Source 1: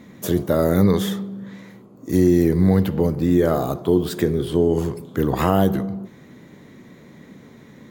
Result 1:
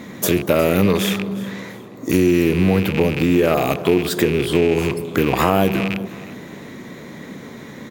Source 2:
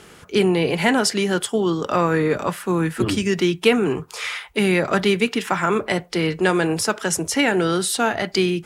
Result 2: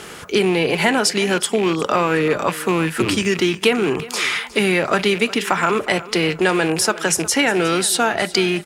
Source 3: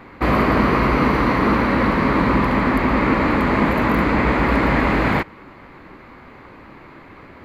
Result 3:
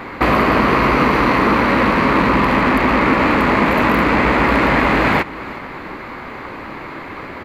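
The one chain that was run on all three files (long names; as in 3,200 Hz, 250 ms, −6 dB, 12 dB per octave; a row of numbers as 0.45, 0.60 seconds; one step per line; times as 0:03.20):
loose part that buzzes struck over −26 dBFS, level −21 dBFS
low-shelf EQ 250 Hz −7 dB
downward compressor 2 to 1, threshold −31 dBFS
repeating echo 361 ms, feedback 31%, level −18 dB
normalise the peak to −1.5 dBFS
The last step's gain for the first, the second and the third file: +12.0, +11.0, +13.0 decibels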